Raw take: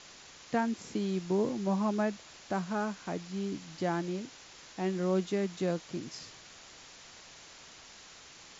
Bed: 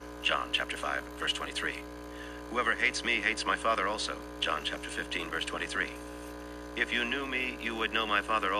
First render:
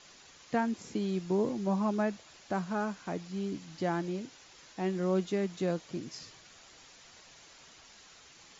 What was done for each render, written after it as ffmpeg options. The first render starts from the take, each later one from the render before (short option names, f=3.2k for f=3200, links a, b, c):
-af "afftdn=nr=6:nf=-53"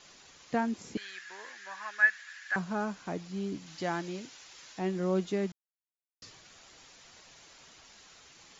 -filter_complex "[0:a]asettb=1/sr,asplit=3[a][b][c];[a]atrim=end=0.974[d];[b]atrim=start=0.97:end=2.56,asetpts=PTS-STARTPTS,afade=t=in:d=0.004:c=qsin,afade=t=out:st=1.586:d=0.004:c=qsin,highpass=f=1.7k:t=q:w=12[e];[c]atrim=start=2.556[f];[d][e]acrossfade=d=0.004:c1=hsin:c2=qsin[g];[g][f]acrossfade=d=0.004:c1=qsin:c2=hsin,asettb=1/sr,asplit=3[h][i][j];[h]atrim=end=3.664[k];[i]atrim=start=3.66:end=4.79,asetpts=PTS-STARTPTS,afade=t=in:d=0.004:c=qsin,afade=t=out:st=1.126:d=0.004:c=qsin,tiltshelf=f=820:g=-4.5[l];[j]atrim=start=4.786[m];[k][l]acrossfade=d=0.004:c1=hsin:c2=qsin[n];[n][m]acrossfade=d=0.004:c1=qsin:c2=hsin,asplit=3[o][p][q];[o]atrim=end=5.52,asetpts=PTS-STARTPTS,afade=t=out:st=5.516:d=0.004:c=hsin[r];[p]atrim=start=5.52:end=6.22,asetpts=PTS-STARTPTS,volume=0[s];[q]atrim=start=6.22,asetpts=PTS-STARTPTS,afade=t=in:d=0.004:c=hsin[t];[r][s][t]concat=n=3:v=0:a=1"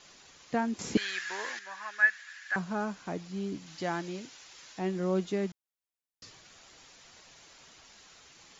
-filter_complex "[0:a]asplit=3[a][b][c];[a]atrim=end=0.792[d];[b]atrim=start=0.788:end=1.592,asetpts=PTS-STARTPTS,volume=9.5dB[e];[c]atrim=start=1.588[f];[d][e]acrossfade=d=0.004:c1=hsin:c2=hsin[g];[g][f]acrossfade=d=0.004:c1=hsin:c2=hsin"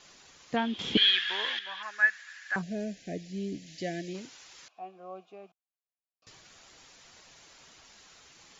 -filter_complex "[0:a]asettb=1/sr,asplit=3[a][b][c];[a]atrim=end=0.564[d];[b]atrim=start=0.56:end=1.83,asetpts=PTS-STARTPTS,afade=t=in:d=0.004:c=qsin,afade=t=out:st=1.266:d=0.004:c=qsin,lowpass=f=3.3k:t=q:w=13[e];[c]atrim=start=1.826[f];[d][e]acrossfade=d=0.004:c1=hsin:c2=qsin[g];[g][f]acrossfade=d=0.004:c1=qsin:c2=hsin,asplit=3[h][i][j];[h]afade=t=out:st=2.61:d=0.02[k];[i]asuperstop=centerf=1100:order=12:qfactor=1.1,afade=t=in:st=2.61:d=0.02,afade=t=out:st=4.13:d=0.02[l];[j]afade=t=in:st=4.13:d=0.02[m];[k][l][m]amix=inputs=3:normalize=0,asettb=1/sr,asplit=3[n][o][p];[n]atrim=end=4.684[q];[o]atrim=start=4.68:end=6.27,asetpts=PTS-STARTPTS,afade=t=in:d=0.004:c=qsin,afade=t=out:st=1.586:d=0.004:c=qsin,asplit=3[r][s][t];[r]bandpass=f=730:t=q:w=8,volume=0dB[u];[s]bandpass=f=1.09k:t=q:w=8,volume=-6dB[v];[t]bandpass=f=2.44k:t=q:w=8,volume=-9dB[w];[u][v][w]amix=inputs=3:normalize=0[x];[p]atrim=start=6.266[y];[q][x]acrossfade=d=0.004:c1=hsin:c2=qsin[z];[z][y]acrossfade=d=0.004:c1=qsin:c2=hsin"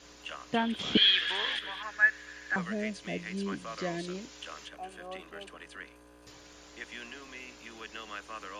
-filter_complex "[1:a]volume=-13.5dB[a];[0:a][a]amix=inputs=2:normalize=0"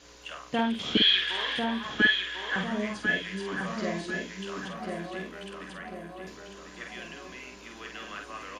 -filter_complex "[0:a]asplit=2[a][b];[b]adelay=48,volume=-5dB[c];[a][c]amix=inputs=2:normalize=0,asplit=2[d][e];[e]adelay=1047,lowpass=f=2.3k:p=1,volume=-3dB,asplit=2[f][g];[g]adelay=1047,lowpass=f=2.3k:p=1,volume=0.48,asplit=2[h][i];[i]adelay=1047,lowpass=f=2.3k:p=1,volume=0.48,asplit=2[j][k];[k]adelay=1047,lowpass=f=2.3k:p=1,volume=0.48,asplit=2[l][m];[m]adelay=1047,lowpass=f=2.3k:p=1,volume=0.48,asplit=2[n][o];[o]adelay=1047,lowpass=f=2.3k:p=1,volume=0.48[p];[f][h][j][l][n][p]amix=inputs=6:normalize=0[q];[d][q]amix=inputs=2:normalize=0"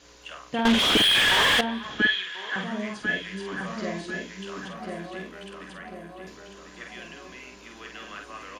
-filter_complex "[0:a]asettb=1/sr,asplit=3[a][b][c];[a]atrim=end=0.654[d];[b]atrim=start=0.65:end=1.61,asetpts=PTS-STARTPTS,afade=t=in:d=0.004:c=qsin,afade=t=out:st=0.956:d=0.004:c=qsin,asplit=2[e][f];[f]highpass=f=720:p=1,volume=35dB,asoftclip=type=tanh:threshold=-10.5dB[g];[e][g]amix=inputs=2:normalize=0,lowpass=f=2.4k:p=1,volume=-6dB[h];[c]atrim=start=1.606[i];[d][h]acrossfade=d=0.004:c1=hsin:c2=qsin[j];[j][i]acrossfade=d=0.004:c1=qsin:c2=hsin,asplit=3[k][l][m];[k]afade=t=out:st=2.14:d=0.02[n];[l]bandreject=f=60:t=h:w=6,bandreject=f=120:t=h:w=6,bandreject=f=180:t=h:w=6,bandreject=f=240:t=h:w=6,bandreject=f=300:t=h:w=6,bandreject=f=360:t=h:w=6,bandreject=f=420:t=h:w=6,bandreject=f=480:t=h:w=6,bandreject=f=540:t=h:w=6,bandreject=f=600:t=h:w=6,afade=t=in:st=2.14:d=0.02,afade=t=out:st=3.02:d=0.02[o];[m]afade=t=in:st=3.02:d=0.02[p];[n][o][p]amix=inputs=3:normalize=0"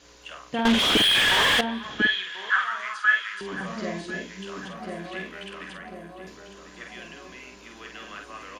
-filter_complex "[0:a]asettb=1/sr,asplit=3[a][b][c];[a]atrim=end=2.504[d];[b]atrim=start=2.5:end=3.41,asetpts=PTS-STARTPTS,afade=t=in:d=0.004:c=qsin,afade=t=out:st=0.906:d=0.004:c=qsin,highpass=f=1.3k:t=q:w=8[e];[c]atrim=start=3.406[f];[d][e]acrossfade=d=0.004:c1=hsin:c2=qsin[g];[g][f]acrossfade=d=0.004:c1=qsin:c2=hsin,asettb=1/sr,asplit=3[h][i][j];[h]atrim=end=5.054[k];[i]atrim=start=5.05:end=5.77,asetpts=PTS-STARTPTS,afade=t=in:d=0.004:c=qsin,afade=t=out:st=0.716:d=0.004:c=qsin,equalizer=f=2.3k:t=o:w=1.4:g=7[l];[j]atrim=start=5.766[m];[k][l]acrossfade=d=0.004:c1=hsin:c2=qsin[n];[n][m]acrossfade=d=0.004:c1=qsin:c2=hsin"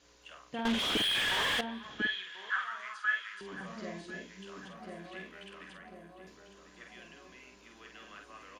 -af "volume=-10.5dB"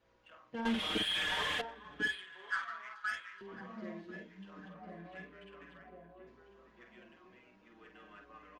-filter_complex "[0:a]adynamicsmooth=sensitivity=5:basefreq=2k,asplit=2[a][b];[b]adelay=5.7,afreqshift=-0.29[c];[a][c]amix=inputs=2:normalize=1"